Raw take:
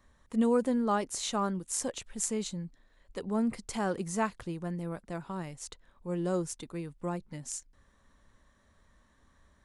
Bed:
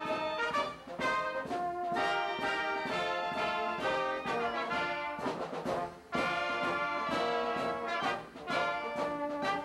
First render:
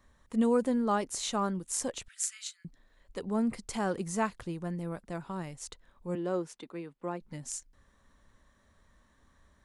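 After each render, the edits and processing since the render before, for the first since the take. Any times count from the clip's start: 2.08–2.65 steep high-pass 1300 Hz 72 dB/oct; 6.15–7.21 three-band isolator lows -24 dB, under 190 Hz, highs -13 dB, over 4200 Hz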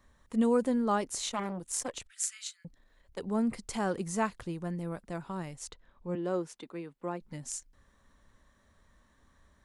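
1.22–3.19 core saturation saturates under 2400 Hz; 5.69–6.23 air absorption 100 m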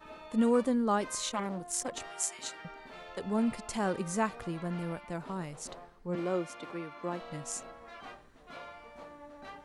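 add bed -14.5 dB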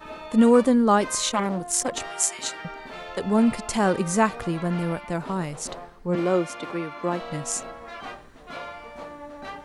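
gain +10 dB

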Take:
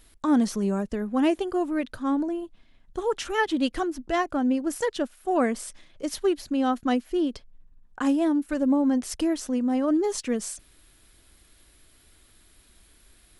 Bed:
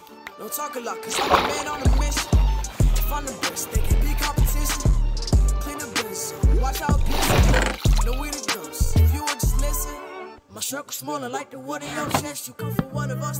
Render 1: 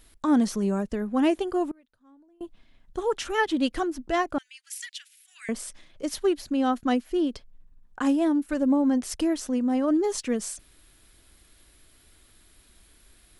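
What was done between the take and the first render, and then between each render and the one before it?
1.71–2.41 flipped gate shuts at -33 dBFS, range -31 dB; 4.38–5.49 steep high-pass 2000 Hz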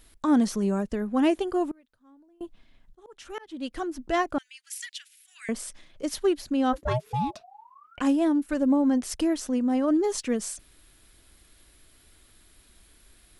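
2.42–4.02 auto swell 0.725 s; 6.72–8 ring modulator 270 Hz -> 1500 Hz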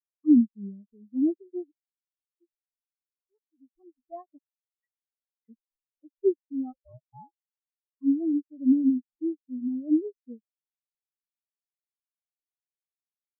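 in parallel at +1 dB: compressor, threshold -32 dBFS, peak gain reduction 14.5 dB; on the sum: spectral expander 4:1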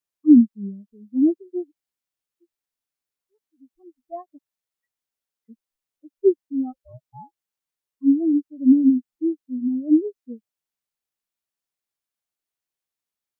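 gain +6.5 dB

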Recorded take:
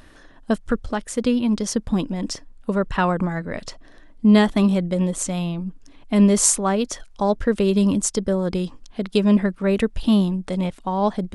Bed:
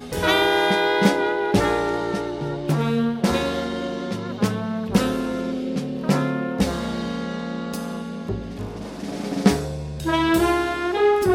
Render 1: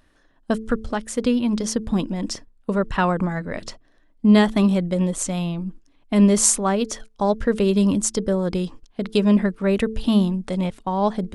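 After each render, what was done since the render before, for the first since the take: de-hum 110.3 Hz, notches 4; gate -37 dBFS, range -12 dB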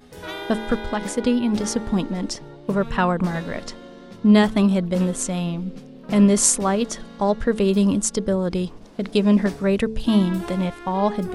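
add bed -14 dB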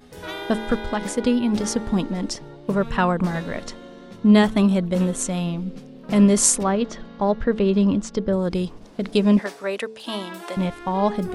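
3.45–5.28 notch 4900 Hz; 6.63–8.33 air absorption 160 m; 9.39–10.57 HPF 540 Hz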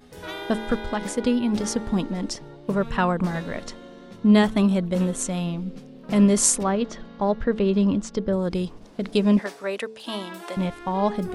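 gain -2 dB

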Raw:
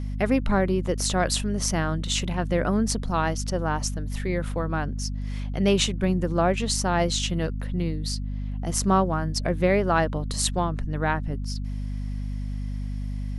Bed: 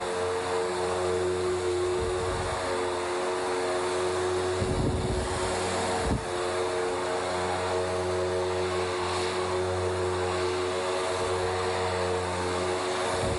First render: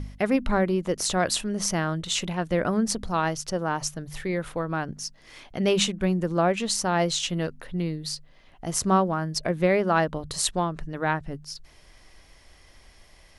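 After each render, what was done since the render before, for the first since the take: de-hum 50 Hz, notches 5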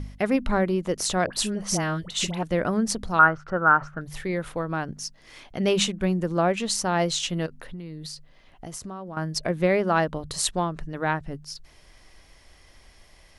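1.26–2.43 dispersion highs, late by 66 ms, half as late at 1100 Hz; 3.19–4.01 synth low-pass 1400 Hz, resonance Q 10; 7.46–9.17 compressor 10:1, threshold -33 dBFS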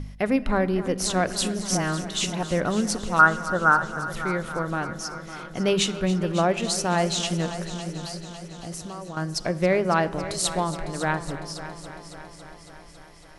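on a send: multi-head echo 0.277 s, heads first and second, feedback 65%, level -16 dB; on the sum: shoebox room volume 1600 m³, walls mixed, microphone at 0.31 m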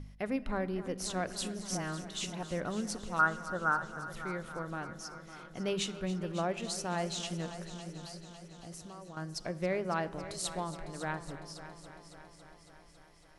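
gain -11.5 dB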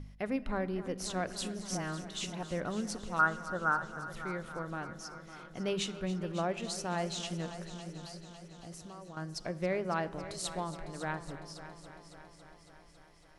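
high shelf 8900 Hz -4.5 dB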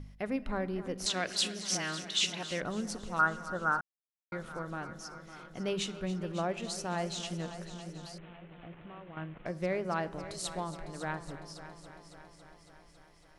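1.06–2.62 weighting filter D; 3.81–4.32 mute; 8.18–9.46 CVSD 16 kbps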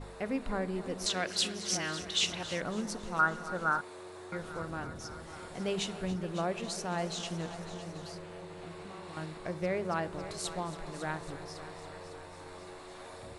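add bed -19.5 dB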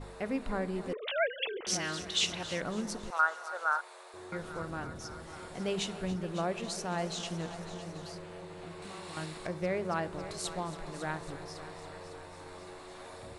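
0.93–1.67 sine-wave speech; 3.1–4.14 HPF 560 Hz 24 dB/oct; 8.82–9.47 high shelf 2800 Hz +9.5 dB

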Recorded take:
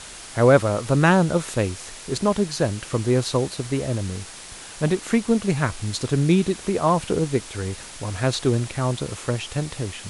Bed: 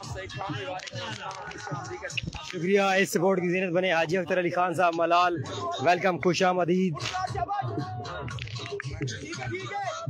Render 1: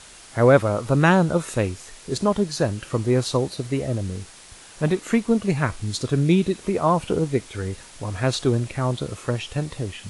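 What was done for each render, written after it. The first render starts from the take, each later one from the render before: noise print and reduce 6 dB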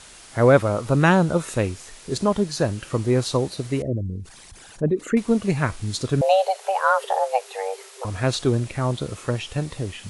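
3.82–5.17 formant sharpening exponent 2; 6.21–8.05 frequency shift +380 Hz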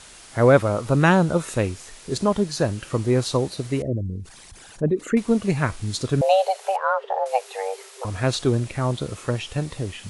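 6.76–7.26 tape spacing loss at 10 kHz 33 dB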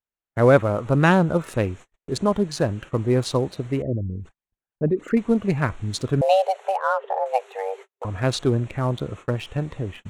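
Wiener smoothing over 9 samples; gate -38 dBFS, range -47 dB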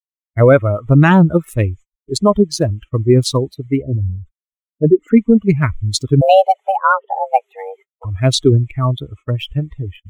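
per-bin expansion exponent 2; maximiser +14 dB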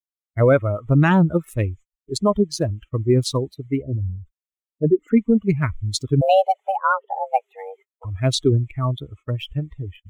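gain -6 dB

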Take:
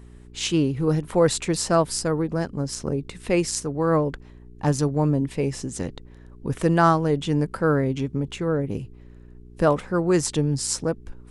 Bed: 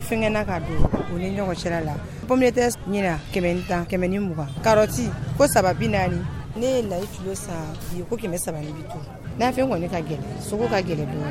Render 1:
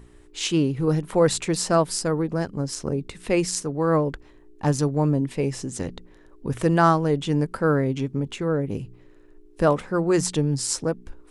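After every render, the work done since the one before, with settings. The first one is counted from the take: de-hum 60 Hz, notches 4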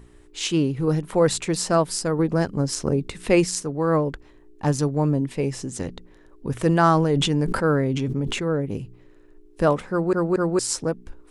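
2.19–3.44 gain +4 dB; 6.66–8.48 sustainer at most 28 dB/s; 9.9 stutter in place 0.23 s, 3 plays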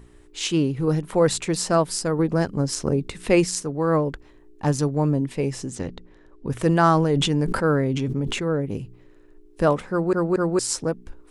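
5.75–6.5 air absorption 64 m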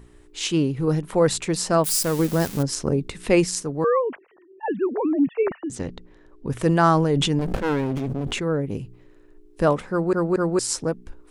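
1.84–2.63 switching spikes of -19.5 dBFS; 3.84–5.7 sine-wave speech; 7.39–8.32 running maximum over 33 samples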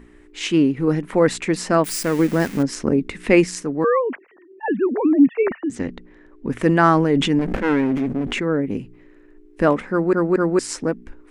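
ten-band EQ 125 Hz -6 dB, 250 Hz +9 dB, 2000 Hz +9 dB, 4000 Hz -3 dB, 16000 Hz -10 dB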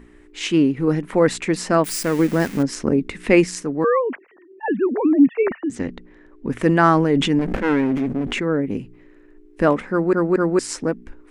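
nothing audible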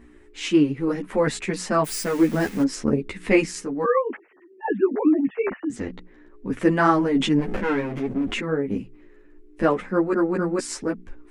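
ensemble effect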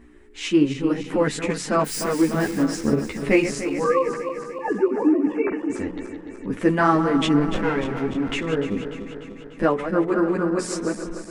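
regenerating reverse delay 0.148 s, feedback 77%, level -10 dB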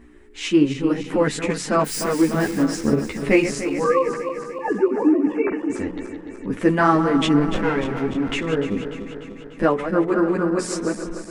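gain +1.5 dB

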